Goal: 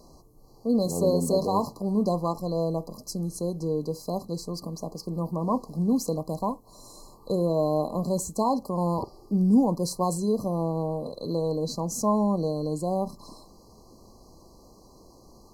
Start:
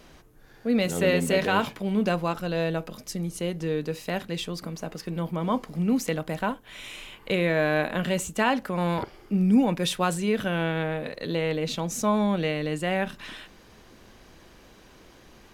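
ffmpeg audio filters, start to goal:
-af "afftfilt=real='re*(1-between(b*sr/4096,1200,4000))':imag='im*(1-between(b*sr/4096,1200,4000))':win_size=4096:overlap=0.75"

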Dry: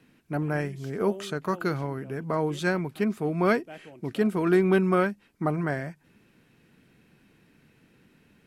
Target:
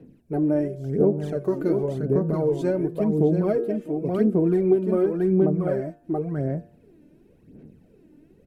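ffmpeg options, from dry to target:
-filter_complex "[0:a]asplit=2[s0][s1];[s1]aecho=0:1:680:0.596[s2];[s0][s2]amix=inputs=2:normalize=0,aphaser=in_gain=1:out_gain=1:delay=3.4:decay=0.64:speed=0.92:type=sinusoidal,equalizer=f=3300:t=o:w=1.8:g=-5,bandreject=f=116.8:t=h:w=4,bandreject=f=233.6:t=h:w=4,bandreject=f=350.4:t=h:w=4,bandreject=f=467.2:t=h:w=4,bandreject=f=584:t=h:w=4,bandreject=f=700.8:t=h:w=4,bandreject=f=817.6:t=h:w=4,bandreject=f=934.4:t=h:w=4,bandreject=f=1051.2:t=h:w=4,bandreject=f=1168:t=h:w=4,bandreject=f=1284.8:t=h:w=4,bandreject=f=1401.6:t=h:w=4,bandreject=f=1518.4:t=h:w=4,bandreject=f=1635.2:t=h:w=4,bandreject=f=1752:t=h:w=4,acompressor=threshold=0.0794:ratio=6,lowshelf=f=770:t=q:w=1.5:g=12.5,volume=0.376"

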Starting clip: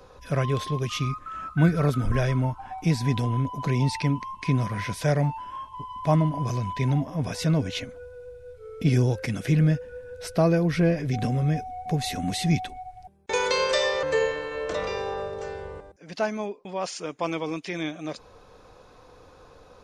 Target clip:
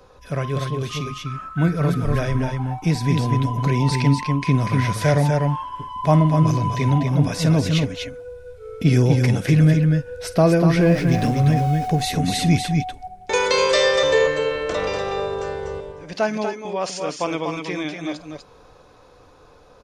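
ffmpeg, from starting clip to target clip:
-filter_complex "[0:a]asettb=1/sr,asplit=3[s0][s1][s2];[s0]atrim=end=10.804[s3];[s1]atrim=start=10.8:end=11.88,asetpts=PTS-STARTPTS,afade=t=in:d=0.004:c=qsin,afade=t=out:st=1.076:d=0.004:c=qsin,aeval=exprs='val(0)+0.5*0.0112*sgn(val(0))':c=same[s4];[s2]atrim=start=11.876[s5];[s3][s4]acrossfade=d=0.004:c1=hsin:c2=qsin[s6];[s6][s5]acrossfade=d=0.004:c1=qsin:c2=hsin,dynaudnorm=f=530:g=11:m=1.88,asplit=2[s7][s8];[s8]aecho=0:1:51|243|250:0.158|0.501|0.282[s9];[s7][s9]amix=inputs=2:normalize=0"

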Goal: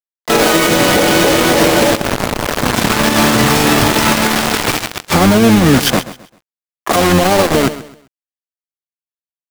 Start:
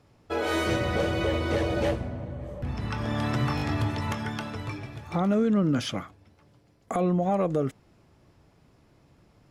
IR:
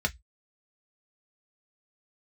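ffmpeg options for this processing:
-filter_complex "[0:a]highpass=f=160:w=0.5412,highpass=f=160:w=1.3066,acompressor=threshold=0.00282:ratio=2,acrusher=bits=6:mix=0:aa=0.000001,asplit=3[s0][s1][s2];[s1]asetrate=22050,aresample=44100,atempo=2,volume=0.355[s3];[s2]asetrate=66075,aresample=44100,atempo=0.66742,volume=0.316[s4];[s0][s3][s4]amix=inputs=3:normalize=0,asplit=2[s5][s6];[s6]aecho=0:1:131|262|393:0.15|0.0449|0.0135[s7];[s5][s7]amix=inputs=2:normalize=0,alimiter=level_in=37.6:limit=0.891:release=50:level=0:latency=1,volume=0.891"

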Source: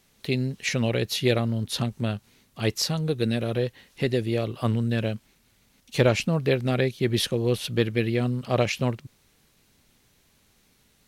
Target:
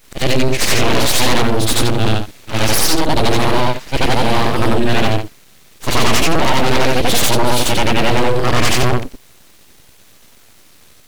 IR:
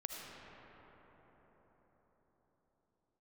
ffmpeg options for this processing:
-af "afftfilt=real='re':imag='-im':win_size=8192:overlap=0.75,apsyclip=22.4,aeval=exprs='abs(val(0))':c=same,volume=0.596"

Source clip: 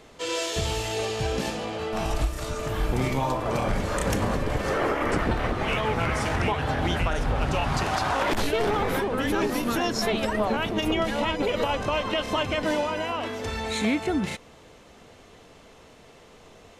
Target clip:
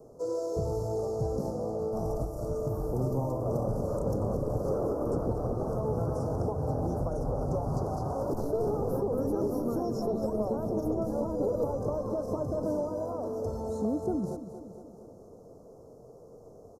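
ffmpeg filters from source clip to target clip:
-filter_complex "[0:a]asuperstop=centerf=2500:order=8:qfactor=0.64,bass=f=250:g=-4,treble=f=4000:g=1,acrossover=split=310|710|4900[s0][s1][s2][s3];[s0]acompressor=threshold=0.0316:ratio=4[s4];[s1]acompressor=threshold=0.0126:ratio=4[s5];[s2]acompressor=threshold=0.0224:ratio=4[s6];[s3]acompressor=threshold=0.00501:ratio=4[s7];[s4][s5][s6][s7]amix=inputs=4:normalize=0,equalizer=f=125:t=o:w=1:g=8,equalizer=f=500:t=o:w=1:g=8,equalizer=f=1000:t=o:w=1:g=-7,equalizer=f=2000:t=o:w=1:g=-8,equalizer=f=4000:t=o:w=1:g=-9,equalizer=f=8000:t=o:w=1:g=-9,asplit=2[s8][s9];[s9]aecho=0:1:233|466|699|932|1165|1398|1631:0.266|0.154|0.0895|0.0519|0.0301|0.0175|0.0101[s10];[s8][s10]amix=inputs=2:normalize=0,volume=0.708"

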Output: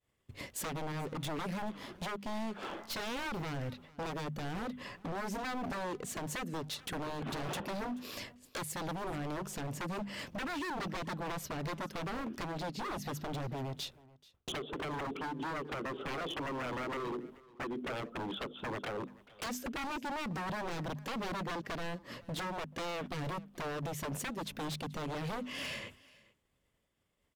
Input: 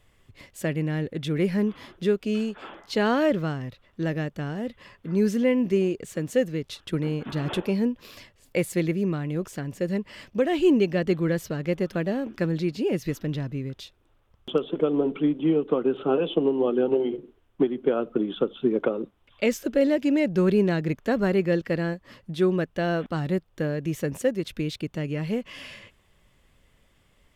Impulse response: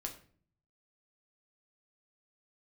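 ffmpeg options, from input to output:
-filter_complex "[0:a]asettb=1/sr,asplit=3[s0][s1][s2];[s0]atrim=end=0.924[s3];[s1]atrim=start=0.92:end=3.37,asetpts=PTS-STARTPTS,afade=t=in:d=0.004:c=qsin,afade=t=out:st=2.446:d=0.004:c=qsin,aeval=exprs='if(lt(val(0),0),0.447*val(0),val(0))':c=same[s4];[s2]atrim=start=3.366[s5];[s3][s4]acrossfade=d=0.004:c1=hsin:c2=qsin[s6];[s6][s5]acrossfade=d=0.004:c1=qsin:c2=hsin,highpass=f=96:p=1,agate=range=0.0224:threshold=0.00251:ratio=3:detection=peak,equalizer=f=2200:t=o:w=2.3:g=-3.5,bandreject=f=50:t=h:w=6,bandreject=f=100:t=h:w=6,bandreject=f=150:t=h:w=6,bandreject=f=200:t=h:w=6,bandreject=f=250:t=h:w=6,acompressor=threshold=0.0112:ratio=2.5,aeval=exprs='0.0112*(abs(mod(val(0)/0.0112+3,4)-2)-1)':c=same,aecho=1:1:433:0.0794,volume=2"

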